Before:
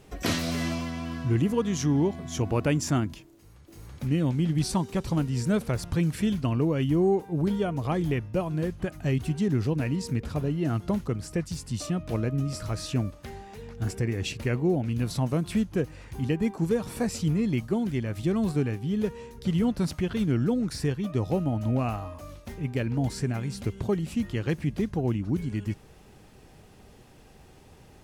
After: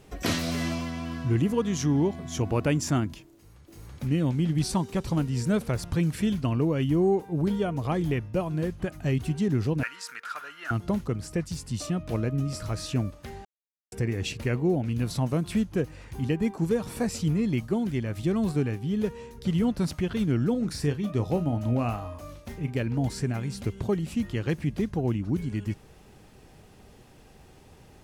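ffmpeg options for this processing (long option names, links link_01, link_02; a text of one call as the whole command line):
ffmpeg -i in.wav -filter_complex "[0:a]asettb=1/sr,asplit=3[link_01][link_02][link_03];[link_01]atrim=end=9.834[link_04];[link_02]atrim=start=9.83:end=10.71,asetpts=PTS-STARTPTS,afade=type=in:duration=0.004:curve=qsin,afade=type=out:start_time=0.876:duration=0.004:curve=qsin,highpass=frequency=1400:width_type=q:width=6.9[link_05];[link_03]atrim=start=10.706[link_06];[link_04][link_05]acrossfade=duration=0.004:curve1=hsin:curve2=qsin[link_07];[link_07][link_06]acrossfade=duration=0.004:curve1=qsin:curve2=hsin,asettb=1/sr,asplit=3[link_08][link_09][link_10];[link_08]atrim=end=20.514[link_11];[link_09]atrim=start=20.51:end=22.71,asetpts=PTS-STARTPTS,afade=type=in:duration=0.004:curve=qsin,afade=type=out:start_time=2.196:duration=0.004:curve=qsin,asplit=2[link_12][link_13];[link_13]adelay=34,volume=-12dB[link_14];[link_12][link_14]amix=inputs=2:normalize=0,atrim=end_sample=97020[link_15];[link_10]atrim=start=22.706[link_16];[link_11][link_15]acrossfade=duration=0.004:curve1=hsin:curve2=qsin[link_17];[link_17][link_16]acrossfade=duration=0.004:curve1=qsin:curve2=hsin,asplit=3[link_18][link_19][link_20];[link_18]atrim=end=13.45,asetpts=PTS-STARTPTS,afade=type=out:start_time=13.446:duration=0.004:curve=hsin[link_21];[link_19]atrim=start=13.45:end=13.92,asetpts=PTS-STARTPTS,volume=0[link_22];[link_20]atrim=start=13.92,asetpts=PTS-STARTPTS,afade=type=in:duration=0.004:curve=hsin[link_23];[link_21][link_22][link_23]concat=n=3:v=0:a=1" out.wav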